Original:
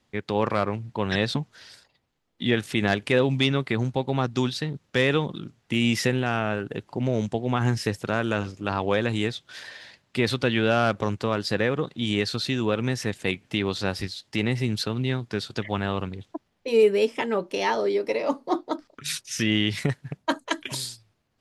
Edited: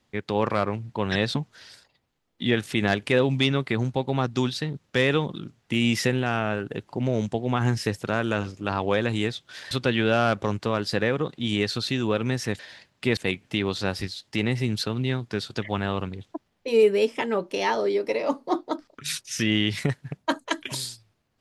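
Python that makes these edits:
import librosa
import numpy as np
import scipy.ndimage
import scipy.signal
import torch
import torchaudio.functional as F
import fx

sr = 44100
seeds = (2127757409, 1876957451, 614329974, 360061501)

y = fx.edit(x, sr, fx.move(start_s=9.71, length_s=0.58, to_s=13.17), tone=tone)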